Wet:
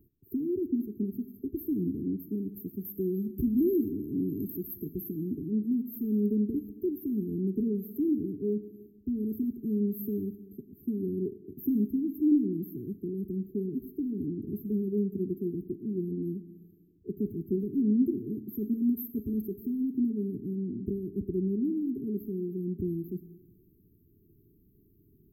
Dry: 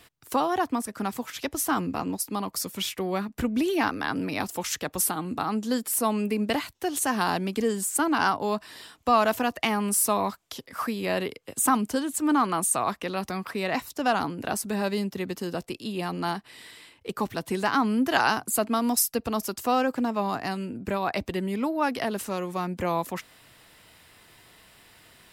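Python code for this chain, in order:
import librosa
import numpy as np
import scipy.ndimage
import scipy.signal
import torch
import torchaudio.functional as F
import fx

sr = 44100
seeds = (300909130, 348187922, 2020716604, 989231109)

y = fx.brickwall_bandstop(x, sr, low_hz=430.0, high_hz=12000.0)
y = fx.peak_eq(y, sr, hz=8400.0, db=fx.steps((0.0, -11.5), (2.85, 4.5), (4.92, -13.0)), octaves=2.8)
y = fx.rev_plate(y, sr, seeds[0], rt60_s=1.3, hf_ratio=0.75, predelay_ms=0, drr_db=10.5)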